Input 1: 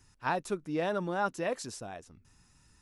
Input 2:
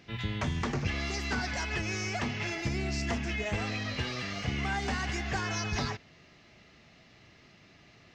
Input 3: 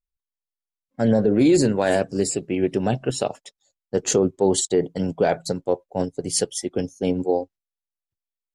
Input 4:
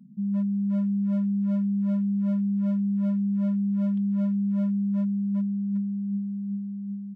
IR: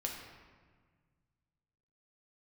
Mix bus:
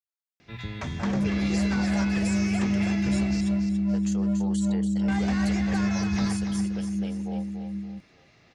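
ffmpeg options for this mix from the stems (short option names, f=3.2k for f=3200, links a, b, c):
-filter_complex "[0:a]adelay=750,volume=-11dB[a];[1:a]bandreject=f=3k:w=18,adelay=400,volume=-1.5dB,asplit=3[b][c][d];[b]atrim=end=3.41,asetpts=PTS-STARTPTS,afade=t=out:st=3.406:d=0.004:c=hsin[e];[c]atrim=start=3.41:end=5.08,asetpts=PTS-STARTPTS,volume=0[f];[d]atrim=start=5.08,asetpts=PTS-STARTPTS,afade=t=in:d=0.004:c=hsin[g];[e][f][g]concat=n=3:v=0:a=1,asplit=2[h][i];[i]volume=-8dB[j];[2:a]highpass=830,acompressor=threshold=-31dB:ratio=2,alimiter=level_in=1.5dB:limit=-24dB:level=0:latency=1:release=99,volume=-1.5dB,volume=-4.5dB,asplit=2[k][l];[l]volume=-7.5dB[m];[3:a]tremolo=f=120:d=0.4,adelay=850,volume=0.5dB,asplit=2[n][o];[o]volume=-12dB[p];[4:a]atrim=start_sample=2205[q];[p][q]afir=irnorm=-1:irlink=0[r];[j][m]amix=inputs=2:normalize=0,aecho=0:1:285|570|855|1140|1425|1710:1|0.4|0.16|0.064|0.0256|0.0102[s];[a][h][k][n][r][s]amix=inputs=6:normalize=0"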